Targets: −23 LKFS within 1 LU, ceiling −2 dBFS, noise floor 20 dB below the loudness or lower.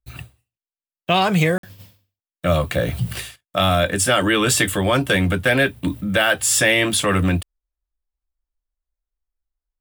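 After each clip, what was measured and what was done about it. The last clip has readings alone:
number of dropouts 1; longest dropout 53 ms; integrated loudness −18.5 LKFS; sample peak −3.0 dBFS; target loudness −23.0 LKFS
→ repair the gap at 0:01.58, 53 ms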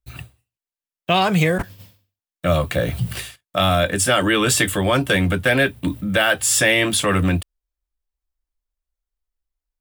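number of dropouts 0; integrated loudness −18.5 LKFS; sample peak −3.0 dBFS; target loudness −23.0 LKFS
→ level −4.5 dB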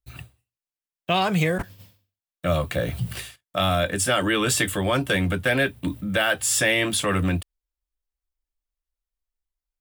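integrated loudness −23.0 LKFS; sample peak −7.5 dBFS; background noise floor −94 dBFS

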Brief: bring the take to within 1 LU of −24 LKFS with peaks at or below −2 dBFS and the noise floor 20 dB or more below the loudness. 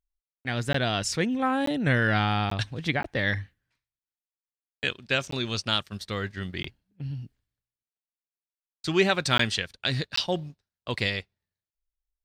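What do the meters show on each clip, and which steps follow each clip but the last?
number of dropouts 8; longest dropout 14 ms; integrated loudness −27.5 LKFS; sample peak −8.0 dBFS; target loudness −24.0 LKFS
→ repair the gap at 0:00.73/0:01.66/0:02.50/0:03.03/0:05.31/0:06.63/0:09.38/0:10.16, 14 ms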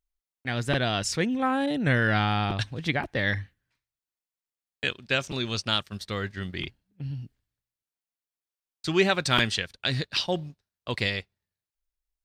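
number of dropouts 0; integrated loudness −27.5 LKFS; sample peak −8.0 dBFS; target loudness −24.0 LKFS
→ level +3.5 dB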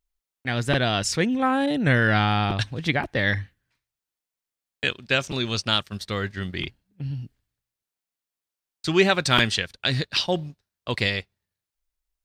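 integrated loudness −24.0 LKFS; sample peak −4.5 dBFS; background noise floor −89 dBFS

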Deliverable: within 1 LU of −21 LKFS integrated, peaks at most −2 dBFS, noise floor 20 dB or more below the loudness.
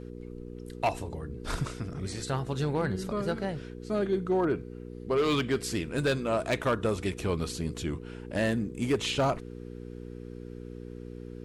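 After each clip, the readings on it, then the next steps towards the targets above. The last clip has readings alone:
share of clipped samples 0.8%; peaks flattened at −20.0 dBFS; mains hum 60 Hz; hum harmonics up to 480 Hz; level of the hum −39 dBFS; integrated loudness −30.5 LKFS; sample peak −20.0 dBFS; target loudness −21.0 LKFS
→ clipped peaks rebuilt −20 dBFS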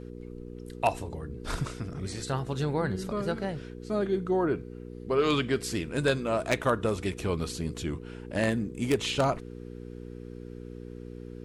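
share of clipped samples 0.0%; mains hum 60 Hz; hum harmonics up to 480 Hz; level of the hum −39 dBFS
→ hum removal 60 Hz, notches 8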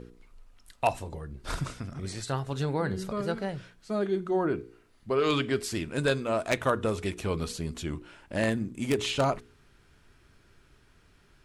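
mains hum none found; integrated loudness −30.5 LKFS; sample peak −10.5 dBFS; target loudness −21.0 LKFS
→ level +9.5 dB
brickwall limiter −2 dBFS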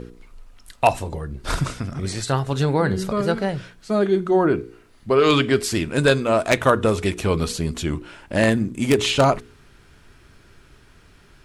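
integrated loudness −21.0 LKFS; sample peak −2.0 dBFS; background noise floor −52 dBFS

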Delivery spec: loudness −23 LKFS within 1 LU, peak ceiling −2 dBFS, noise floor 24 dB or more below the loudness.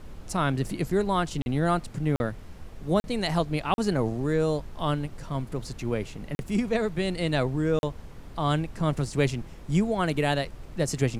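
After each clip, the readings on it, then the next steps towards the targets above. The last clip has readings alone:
number of dropouts 6; longest dropout 41 ms; background noise floor −44 dBFS; target noise floor −52 dBFS; integrated loudness −28.0 LKFS; sample peak −11.0 dBFS; target loudness −23.0 LKFS
→ repair the gap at 0:01.42/0:02.16/0:03.00/0:03.74/0:06.35/0:07.79, 41 ms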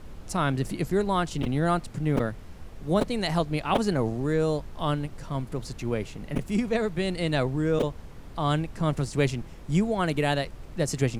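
number of dropouts 0; background noise floor −44 dBFS; target noise floor −52 dBFS
→ noise reduction from a noise print 8 dB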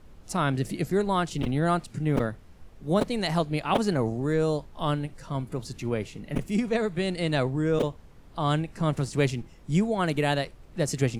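background noise floor −50 dBFS; target noise floor −52 dBFS
→ noise reduction from a noise print 6 dB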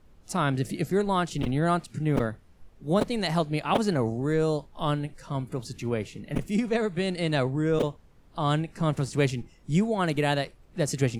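background noise floor −56 dBFS; integrated loudness −27.5 LKFS; sample peak −10.5 dBFS; target loudness −23.0 LKFS
→ level +4.5 dB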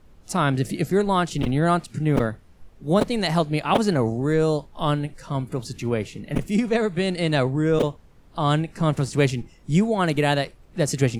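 integrated loudness −23.0 LKFS; sample peak −6.0 dBFS; background noise floor −52 dBFS

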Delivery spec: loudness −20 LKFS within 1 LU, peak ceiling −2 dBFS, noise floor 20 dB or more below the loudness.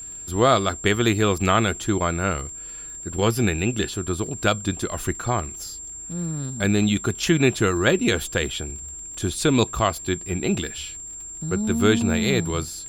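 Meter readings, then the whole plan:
crackle rate 36 per second; interfering tone 7,400 Hz; level of the tone −34 dBFS; integrated loudness −23.0 LKFS; sample peak −5.5 dBFS; target loudness −20.0 LKFS
→ click removal
notch filter 7,400 Hz, Q 30
level +3 dB

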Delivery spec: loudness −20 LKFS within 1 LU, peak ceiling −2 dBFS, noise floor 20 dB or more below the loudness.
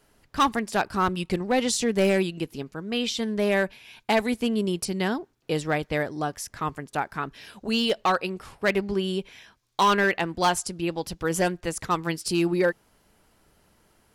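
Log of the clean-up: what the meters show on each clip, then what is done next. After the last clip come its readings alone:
share of clipped samples 0.8%; peaks flattened at −15.0 dBFS; integrated loudness −26.0 LKFS; sample peak −15.0 dBFS; target loudness −20.0 LKFS
→ clipped peaks rebuilt −15 dBFS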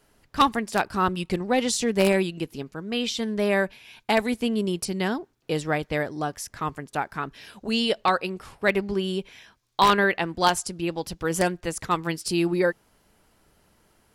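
share of clipped samples 0.0%; integrated loudness −25.5 LKFS; sample peak −6.0 dBFS; target loudness −20.0 LKFS
→ level +5.5 dB
brickwall limiter −2 dBFS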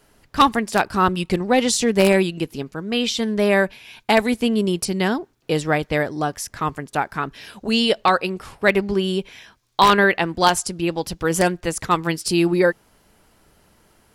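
integrated loudness −20.5 LKFS; sample peak −2.0 dBFS; background noise floor −61 dBFS

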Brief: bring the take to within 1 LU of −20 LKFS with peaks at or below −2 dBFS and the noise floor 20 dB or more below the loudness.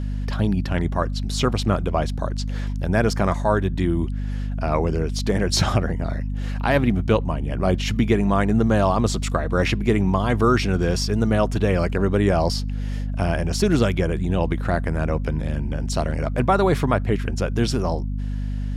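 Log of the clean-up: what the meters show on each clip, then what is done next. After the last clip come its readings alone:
mains hum 50 Hz; hum harmonics up to 250 Hz; level of the hum −23 dBFS; integrated loudness −22.0 LKFS; sample peak −5.5 dBFS; target loudness −20.0 LKFS
→ hum removal 50 Hz, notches 5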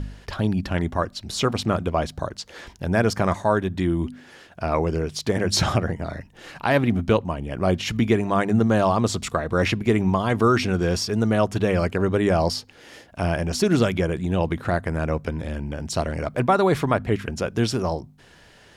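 mains hum none found; integrated loudness −23.0 LKFS; sample peak −6.0 dBFS; target loudness −20.0 LKFS
→ level +3 dB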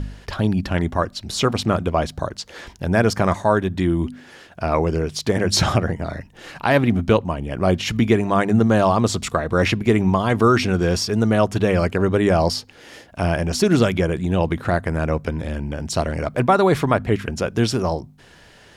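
integrated loudness −20.0 LKFS; sample peak −3.0 dBFS; background noise floor −48 dBFS

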